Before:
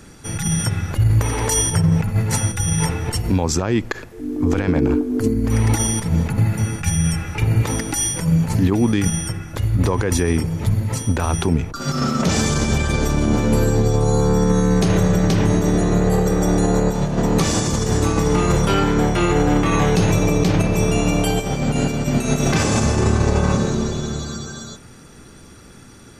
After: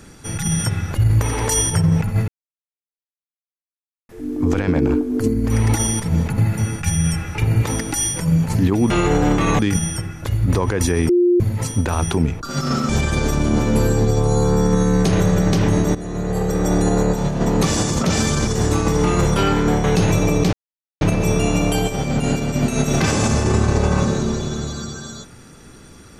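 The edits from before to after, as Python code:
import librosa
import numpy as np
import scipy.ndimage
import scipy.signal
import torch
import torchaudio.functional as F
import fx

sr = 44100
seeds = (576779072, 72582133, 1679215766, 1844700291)

y = fx.edit(x, sr, fx.silence(start_s=2.28, length_s=1.81),
    fx.bleep(start_s=10.4, length_s=0.31, hz=353.0, db=-11.0),
    fx.move(start_s=12.2, length_s=0.46, to_s=17.78),
    fx.fade_in_from(start_s=15.72, length_s=0.77, floor_db=-15.0),
    fx.move(start_s=19.15, length_s=0.69, to_s=8.9),
    fx.insert_silence(at_s=20.53, length_s=0.48), tone=tone)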